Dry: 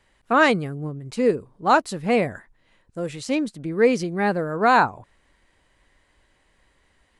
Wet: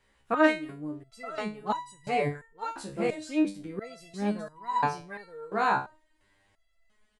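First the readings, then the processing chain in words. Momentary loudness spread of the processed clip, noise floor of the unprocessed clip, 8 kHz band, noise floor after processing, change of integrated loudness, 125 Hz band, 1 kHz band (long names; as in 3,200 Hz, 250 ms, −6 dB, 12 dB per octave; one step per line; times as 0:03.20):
16 LU, −65 dBFS, −9.0 dB, −69 dBFS, −8.5 dB, −9.0 dB, −7.5 dB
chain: single-tap delay 920 ms −5.5 dB
step-sequenced resonator 2.9 Hz 68–970 Hz
level +4 dB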